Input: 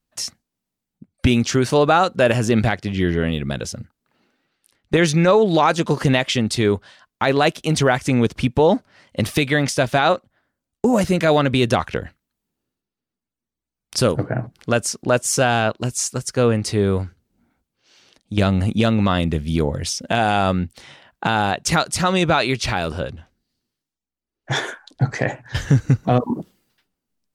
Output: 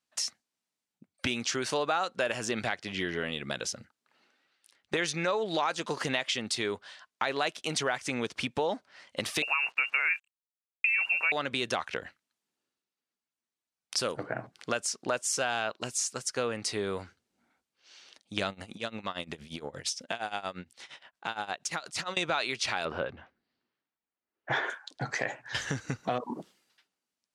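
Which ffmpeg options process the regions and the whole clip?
-filter_complex "[0:a]asettb=1/sr,asplit=3[a][b][c];[a]atrim=end=9.424[d];[b]atrim=start=9.42:end=11.32,asetpts=PTS-STARTPTS,afade=t=in:d=0.004:c=qsin,afade=t=out:st=1.896:d=0.004:c=qsin,lowpass=f=2.5k:t=q:w=0.5098,lowpass=f=2.5k:t=q:w=0.6013,lowpass=f=2.5k:t=q:w=0.9,lowpass=f=2.5k:t=q:w=2.563,afreqshift=-2900,acrusher=bits=7:mix=0:aa=0.5[e];[c]atrim=start=11.316[f];[d][e]acrossfade=d=0.004:c1=hsin:c2=qsin[g];[g][f]acrossfade=d=0.004:c1=qsin:c2=hsin,asettb=1/sr,asplit=3[h][i][j];[h]atrim=end=18.504[k];[i]atrim=start=18.5:end=22.17,asetpts=PTS-STARTPTS,afade=t=in:d=0.004:c=qsin,afade=t=out:st=3.666:d=0.004:c=qsin,acompressor=threshold=-21dB:ratio=4:attack=3.2:release=140:knee=1:detection=peak,tremolo=f=8.6:d=0.88[l];[j]atrim=start=22.166[m];[k][l]acrossfade=d=0.004:c1=hsin:c2=qsin[n];[n][m]acrossfade=d=0.004:c1=qsin:c2=hsin,asettb=1/sr,asplit=3[o][p][q];[o]atrim=end=22.854[r];[p]atrim=start=22.85:end=24.7,asetpts=PTS-STARTPTS,afade=t=in:d=0.004:c=qsin,afade=t=out:st=1.846:d=0.004:c=qsin,lowpass=2k,acontrast=34[s];[q]atrim=start=24.696[t];[r][s]acrossfade=d=0.004:c1=hsin:c2=qsin[u];[u][t]acrossfade=d=0.004:c1=qsin:c2=hsin,highpass=f=950:p=1,acompressor=threshold=-30dB:ratio=2.5,lowpass=9.2k"

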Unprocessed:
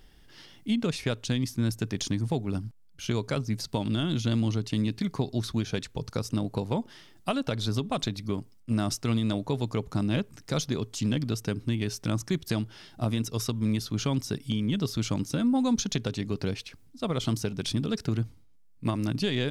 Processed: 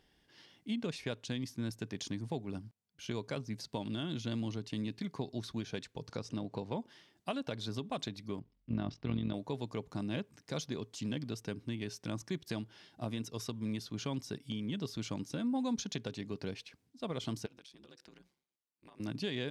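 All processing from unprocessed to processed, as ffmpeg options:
-filter_complex "[0:a]asettb=1/sr,asplit=3[a][b][c];[a]atrim=end=6.094[d];[b]atrim=start=6.09:end=6.8,asetpts=PTS-STARTPTS,afade=t=in:d=0.004:c=qsin,afade=t=out:st=0.706:d=0.004:c=qsin,lowpass=6.4k,acompressor=mode=upward:threshold=-29dB:ratio=2.5:attack=3.2:release=140:knee=2.83:detection=peak[e];[c]atrim=start=6.796[f];[d][e]acrossfade=d=0.004:c1=hsin:c2=qsin[g];[g][f]acrossfade=d=0.004:c1=qsin:c2=hsin,asettb=1/sr,asplit=3[h][i][j];[h]atrim=end=8.394[k];[i]atrim=start=8.39:end=9.34,asetpts=PTS-STARTPTS,afade=t=in:d=0.004:c=qsin,afade=t=out:st=0.946:d=0.004:c=qsin,lowpass=f=4.2k:w=0.5412,lowpass=f=4.2k:w=1.3066,lowshelf=f=210:g=9.5,tremolo=f=44:d=0.71[l];[j]atrim=start=9.336[m];[k][l]acrossfade=d=0.004:c1=hsin:c2=qsin[n];[n][m]acrossfade=d=0.004:c1=qsin:c2=hsin,asettb=1/sr,asplit=3[o][p][q];[o]atrim=end=17.464[r];[p]atrim=start=17.46:end=19,asetpts=PTS-STARTPTS,afade=t=in:d=0.004:c=qsin,afade=t=out:st=1.536:d=0.004:c=qsin,highpass=f=730:p=1,acompressor=threshold=-41dB:ratio=8:attack=3.2:release=140:knee=1:detection=peak,aeval=exprs='val(0)*sin(2*PI*68*n/s)':c=same[s];[q]atrim=start=18.996[t];[r][s]acrossfade=d=0.004:c1=hsin:c2=qsin[u];[u][t]acrossfade=d=0.004:c1=qsin:c2=hsin,highpass=f=180:p=1,highshelf=f=8.7k:g=-9.5,bandreject=f=1.3k:w=10,volume=-7.5dB"

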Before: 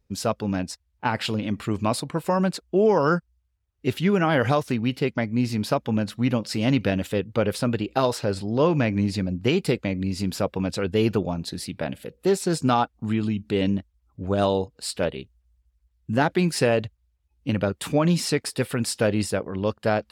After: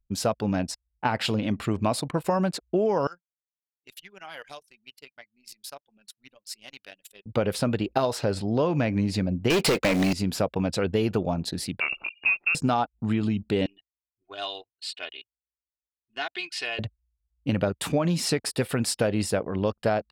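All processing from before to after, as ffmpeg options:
-filter_complex "[0:a]asettb=1/sr,asplit=3[a][b][c];[a]atrim=end=3.074[d];[b]atrim=start=3.07:end=7.26,asetpts=PTS-STARTPTS,afade=t=in:d=0.004:c=qsin,afade=t=out:st=4.186:d=0.004:c=qsin,aderivative,flanger=delay=5:depth=2.1:regen=49:speed=1.7:shape=sinusoidal[e];[c]atrim=start=7.256[f];[d][e]acrossfade=d=0.004:c1=hsin:c2=qsin[g];[g][f]acrossfade=d=0.004:c1=qsin:c2=hsin,asettb=1/sr,asplit=3[h][i][j];[h]atrim=end=9.504[k];[i]atrim=start=9.5:end=10.13,asetpts=PTS-STARTPTS,afade=t=in:d=0.004:c=qsin,afade=t=out:st=0.626:d=0.004:c=qsin,highpass=82,acrusher=bits=7:mode=log:mix=0:aa=0.000001,asplit=2[l][m];[m]highpass=f=720:p=1,volume=29dB,asoftclip=type=tanh:threshold=-10dB[n];[l][n]amix=inputs=2:normalize=0,lowpass=f=6.3k:p=1,volume=-6dB[o];[j]atrim=start=10.126[p];[k][o]acrossfade=d=0.004:c1=hsin:c2=qsin[q];[q][p]acrossfade=d=0.004:c1=qsin:c2=hsin,asettb=1/sr,asplit=3[r][s][t];[r]atrim=end=11.804[u];[s]atrim=start=11.8:end=12.55,asetpts=PTS-STARTPTS,afade=t=in:d=0.004:c=qsin,afade=t=out:st=0.746:d=0.004:c=qsin,acompressor=mode=upward:threshold=-26dB:ratio=2.5:attack=3.2:release=140:knee=2.83:detection=peak,lowpass=f=2.5k:t=q:w=0.5098,lowpass=f=2.5k:t=q:w=0.6013,lowpass=f=2.5k:t=q:w=0.9,lowpass=f=2.5k:t=q:w=2.563,afreqshift=-2900[v];[t]atrim=start=12.546[w];[u][v]acrossfade=d=0.004:c1=hsin:c2=qsin[x];[x][w]acrossfade=d=0.004:c1=qsin:c2=hsin,asettb=1/sr,asplit=3[y][z][aa];[y]atrim=end=13.664[ab];[z]atrim=start=13.66:end=16.79,asetpts=PTS-STARTPTS,afade=t=in:d=0.004:c=qsin,afade=t=out:st=3.126:d=0.004:c=qsin,bandpass=f=3.1k:t=q:w=1.9,aecho=1:1:2.8:0.78,atrim=end_sample=138033[ac];[aa]atrim=start=16.786[ad];[ab][ac]acrossfade=d=0.004:c1=hsin:c2=qsin[ae];[ae][ad]acrossfade=d=0.004:c1=qsin:c2=hsin,anlmdn=0.0631,equalizer=f=690:t=o:w=0.52:g=4,acompressor=threshold=-21dB:ratio=6,volume=1dB"

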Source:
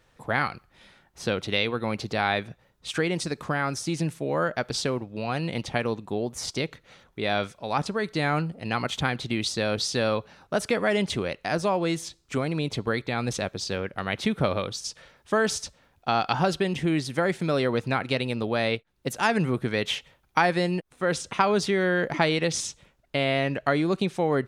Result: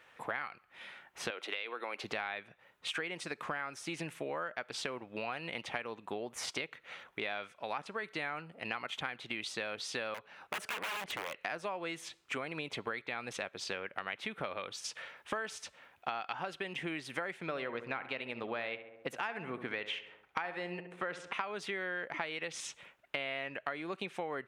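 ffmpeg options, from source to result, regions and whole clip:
-filter_complex "[0:a]asettb=1/sr,asplit=3[a][b][c];[a]atrim=end=1.304[d];[b]atrim=start=1.3:end=2.04,asetpts=PTS-STARTPTS,afade=t=in:d=0.004:c=qsin,afade=t=out:st=0.736:d=0.004:c=qsin,highpass=f=300:w=0.5412,highpass=f=300:w=1.3066,acompressor=threshold=-28dB:ratio=2.5:attack=3.2:release=140:knee=1:detection=peak[e];[c]atrim=start=2.036[f];[d][e]acrossfade=d=0.004:c1=hsin:c2=qsin[g];[g][f]acrossfade=d=0.004:c1=qsin:c2=hsin,asettb=1/sr,asplit=3[h][i][j];[h]atrim=end=10.144[k];[i]atrim=start=10.14:end=11.41,asetpts=PTS-STARTPTS,afade=t=in:d=0.004:c=qsin,afade=t=out:st=1.266:d=0.004:c=qsin,aeval=exprs='(mod(11.2*val(0)+1,2)-1)/11.2':c=same,aeval=exprs='(tanh(25.1*val(0)+0.5)-tanh(0.5))/25.1':c=same[l];[j]atrim=start=11.406[m];[k][l]acrossfade=d=0.004:c1=hsin:c2=qsin[n];[n][m]acrossfade=d=0.004:c1=qsin:c2=hsin,asettb=1/sr,asplit=3[o][p][q];[o]atrim=end=17.394[r];[p]atrim=start=17.39:end=21.32,asetpts=PTS-STARTPTS,afade=t=in:d=0.004:c=qsin,afade=t=out:st=3.926:d=0.004:c=qsin,lowpass=f=3.7k:p=1,asplit=2[s][t];[t]adelay=68,lowpass=f=1.9k:p=1,volume=-11.5dB,asplit=2[u][v];[v]adelay=68,lowpass=f=1.9k:p=1,volume=0.52,asplit=2[w][x];[x]adelay=68,lowpass=f=1.9k:p=1,volume=0.52,asplit=2[y][z];[z]adelay=68,lowpass=f=1.9k:p=1,volume=0.52,asplit=2[aa][ab];[ab]adelay=68,lowpass=f=1.9k:p=1,volume=0.52,asplit=2[ac][ad];[ad]adelay=68,lowpass=f=1.9k:p=1,volume=0.52[ae];[s][u][w][y][aa][ac][ae]amix=inputs=7:normalize=0,atrim=end_sample=173313[af];[q]atrim=start=21.316[ag];[r][af]acrossfade=d=0.004:c1=hsin:c2=qsin[ah];[ah][ag]acrossfade=d=0.004:c1=qsin:c2=hsin,highpass=f=1k:p=1,highshelf=f=3.5k:t=q:w=1.5:g=-8.5,acompressor=threshold=-42dB:ratio=6,volume=6dB"

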